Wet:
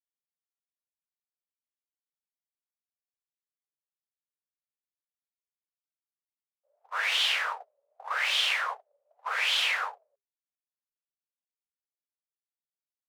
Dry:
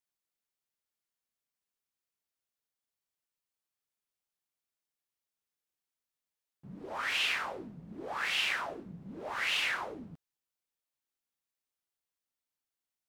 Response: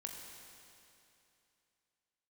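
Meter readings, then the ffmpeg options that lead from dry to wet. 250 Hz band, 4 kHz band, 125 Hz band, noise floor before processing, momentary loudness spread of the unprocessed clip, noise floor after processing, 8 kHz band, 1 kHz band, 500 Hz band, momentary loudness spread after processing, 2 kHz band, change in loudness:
below −40 dB, +7.5 dB, below −40 dB, below −85 dBFS, 18 LU, below −85 dBFS, +5.5 dB, +5.0 dB, −3.0 dB, 13 LU, +4.5 dB, +5.5 dB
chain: -filter_complex "[0:a]agate=range=-41dB:threshold=-39dB:ratio=16:detection=peak,afreqshift=400,asplit=2[link_01][link_02];[link_02]acompressor=threshold=-42dB:ratio=6,volume=-1dB[link_03];[link_01][link_03]amix=inputs=2:normalize=0,tiltshelf=frequency=690:gain=4.5,acontrast=39,volume=1.5dB"

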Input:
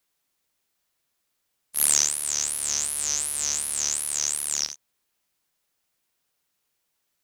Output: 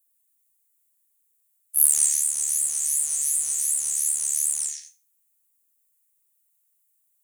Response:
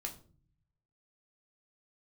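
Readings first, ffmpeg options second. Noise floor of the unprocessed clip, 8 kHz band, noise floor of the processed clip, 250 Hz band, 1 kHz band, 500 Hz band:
−77 dBFS, +2.5 dB, −70 dBFS, below −10 dB, below −10 dB, below −10 dB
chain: -filter_complex "[0:a]asplit=2[link_01][link_02];[link_02]asuperpass=centerf=4300:order=20:qfactor=0.52[link_03];[1:a]atrim=start_sample=2205,adelay=133[link_04];[link_03][link_04]afir=irnorm=-1:irlink=0,volume=2dB[link_05];[link_01][link_05]amix=inputs=2:normalize=0,aexciter=amount=9.7:drive=5.9:freq=7400,volume=-14.5dB"

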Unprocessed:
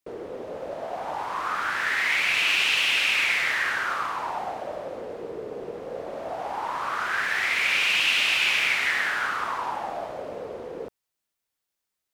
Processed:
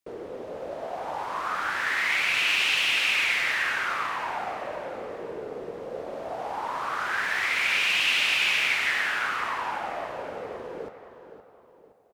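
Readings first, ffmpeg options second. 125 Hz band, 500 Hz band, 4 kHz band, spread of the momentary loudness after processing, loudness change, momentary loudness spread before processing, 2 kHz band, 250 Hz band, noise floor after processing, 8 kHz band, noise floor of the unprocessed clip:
−1.0 dB, −1.0 dB, −1.5 dB, 16 LU, −1.5 dB, 16 LU, −1.0 dB, −1.0 dB, −54 dBFS, −1.5 dB, −84 dBFS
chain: -filter_complex "[0:a]asplit=2[link_01][link_02];[link_02]adelay=517,lowpass=frequency=4300:poles=1,volume=-11dB,asplit=2[link_03][link_04];[link_04]adelay=517,lowpass=frequency=4300:poles=1,volume=0.42,asplit=2[link_05][link_06];[link_06]adelay=517,lowpass=frequency=4300:poles=1,volume=0.42,asplit=2[link_07][link_08];[link_08]adelay=517,lowpass=frequency=4300:poles=1,volume=0.42[link_09];[link_01][link_03][link_05][link_07][link_09]amix=inputs=5:normalize=0,volume=-1.5dB"

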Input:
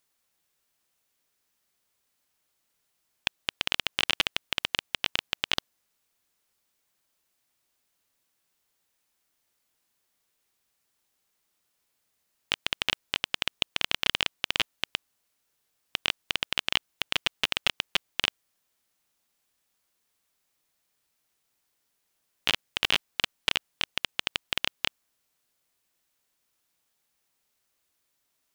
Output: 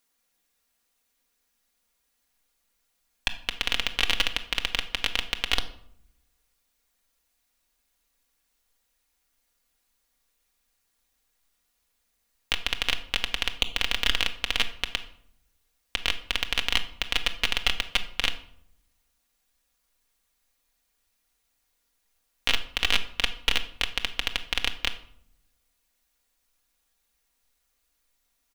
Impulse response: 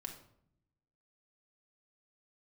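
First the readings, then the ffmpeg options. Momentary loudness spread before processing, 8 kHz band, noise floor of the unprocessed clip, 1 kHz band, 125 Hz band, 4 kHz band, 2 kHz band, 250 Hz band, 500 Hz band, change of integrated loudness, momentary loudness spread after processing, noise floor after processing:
5 LU, +2.5 dB, −77 dBFS, +1.5 dB, +4.5 dB, +1.5 dB, +2.0 dB, +1.5 dB, +1.0 dB, +2.0 dB, 7 LU, −75 dBFS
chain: -filter_complex "[0:a]acrusher=bits=7:mode=log:mix=0:aa=0.000001,aecho=1:1:4.2:0.52,asubboost=boost=6:cutoff=63,asplit=2[link_01][link_02];[1:a]atrim=start_sample=2205[link_03];[link_02][link_03]afir=irnorm=-1:irlink=0,volume=4dB[link_04];[link_01][link_04]amix=inputs=2:normalize=0,volume=-5dB"

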